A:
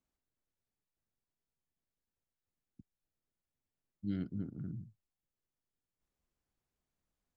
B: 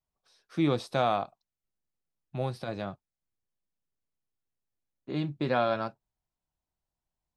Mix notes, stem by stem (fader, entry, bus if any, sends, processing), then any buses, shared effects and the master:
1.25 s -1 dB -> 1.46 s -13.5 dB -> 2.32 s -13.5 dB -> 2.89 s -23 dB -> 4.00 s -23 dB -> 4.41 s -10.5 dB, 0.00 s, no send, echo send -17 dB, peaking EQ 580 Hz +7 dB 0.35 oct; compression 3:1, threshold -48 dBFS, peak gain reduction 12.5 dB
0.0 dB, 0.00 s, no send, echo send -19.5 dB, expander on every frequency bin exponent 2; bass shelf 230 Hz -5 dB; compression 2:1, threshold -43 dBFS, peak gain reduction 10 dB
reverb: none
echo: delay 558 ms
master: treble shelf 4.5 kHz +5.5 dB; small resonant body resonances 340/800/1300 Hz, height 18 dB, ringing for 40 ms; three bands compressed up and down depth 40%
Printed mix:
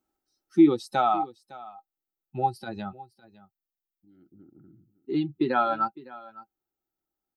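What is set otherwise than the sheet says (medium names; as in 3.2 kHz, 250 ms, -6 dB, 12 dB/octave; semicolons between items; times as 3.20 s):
stem B 0.0 dB -> +7.0 dB; master: missing three bands compressed up and down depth 40%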